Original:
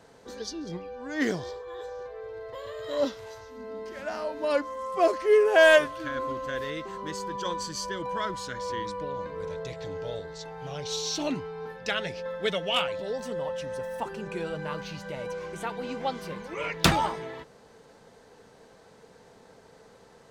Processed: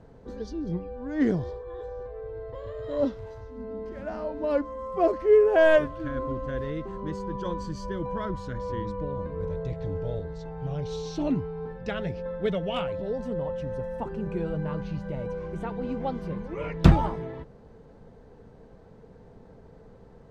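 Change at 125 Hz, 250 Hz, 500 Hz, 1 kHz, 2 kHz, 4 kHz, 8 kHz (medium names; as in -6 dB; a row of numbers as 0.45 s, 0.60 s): +9.5 dB, +5.5 dB, +0.5 dB, -3.0 dB, -7.0 dB, -11.5 dB, under -15 dB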